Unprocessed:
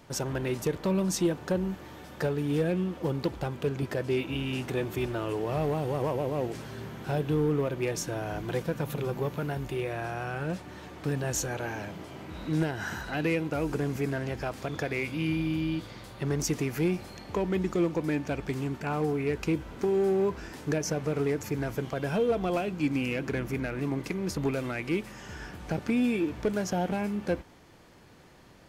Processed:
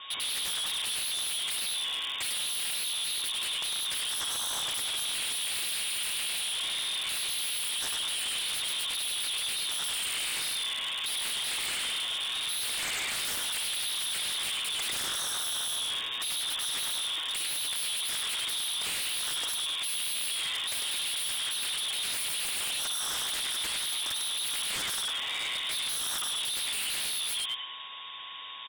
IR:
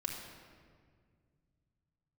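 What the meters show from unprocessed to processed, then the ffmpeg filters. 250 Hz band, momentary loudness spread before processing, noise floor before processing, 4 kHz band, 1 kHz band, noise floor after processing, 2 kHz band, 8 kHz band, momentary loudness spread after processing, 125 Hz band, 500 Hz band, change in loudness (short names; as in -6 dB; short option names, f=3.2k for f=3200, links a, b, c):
-27.0 dB, 8 LU, -47 dBFS, +17.5 dB, -5.5 dB, -35 dBFS, +2.0 dB, +11.0 dB, 1 LU, -27.5 dB, -22.5 dB, +1.5 dB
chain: -filter_complex "[0:a]equalizer=f=760:t=o:w=1.6:g=5.5,asplit=2[a][b];[b]acompressor=threshold=-32dB:ratio=6,volume=-1dB[c];[a][c]amix=inputs=2:normalize=0,flanger=delay=3.8:depth=4.5:regen=-1:speed=1.7:shape=triangular,asoftclip=type=tanh:threshold=-25.5dB,aeval=exprs='val(0)+0.00224*sin(2*PI*2700*n/s)':c=same,lowpass=f=3.2k:t=q:w=0.5098,lowpass=f=3.2k:t=q:w=0.6013,lowpass=f=3.2k:t=q:w=0.9,lowpass=f=3.2k:t=q:w=2.563,afreqshift=-3800,asplit=2[d][e];[e]asplit=6[f][g][h][i][j][k];[f]adelay=100,afreqshift=-79,volume=-4.5dB[l];[g]adelay=200,afreqshift=-158,volume=-11.1dB[m];[h]adelay=300,afreqshift=-237,volume=-17.6dB[n];[i]adelay=400,afreqshift=-316,volume=-24.2dB[o];[j]adelay=500,afreqshift=-395,volume=-30.7dB[p];[k]adelay=600,afreqshift=-474,volume=-37.3dB[q];[l][m][n][o][p][q]amix=inputs=6:normalize=0[r];[d][r]amix=inputs=2:normalize=0,aeval=exprs='0.0224*(abs(mod(val(0)/0.0224+3,4)-2)-1)':c=same,volume=5.5dB"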